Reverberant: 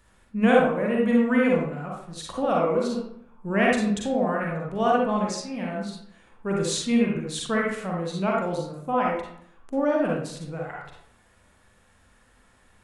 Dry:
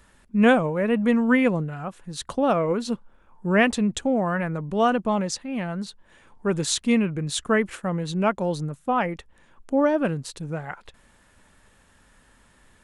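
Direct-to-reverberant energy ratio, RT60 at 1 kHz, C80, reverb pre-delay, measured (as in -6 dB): -3.0 dB, 0.70 s, 4.5 dB, 38 ms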